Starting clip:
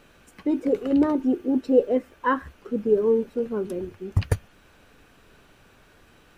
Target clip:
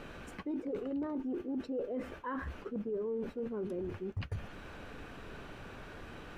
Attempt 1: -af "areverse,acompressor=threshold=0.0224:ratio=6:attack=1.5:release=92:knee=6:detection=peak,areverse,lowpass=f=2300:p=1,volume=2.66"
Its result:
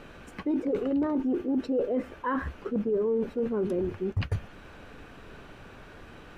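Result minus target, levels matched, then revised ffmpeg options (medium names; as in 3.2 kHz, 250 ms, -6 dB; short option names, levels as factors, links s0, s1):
compression: peak gain reduction -9.5 dB
-af "areverse,acompressor=threshold=0.00596:ratio=6:attack=1.5:release=92:knee=6:detection=peak,areverse,lowpass=f=2300:p=1,volume=2.66"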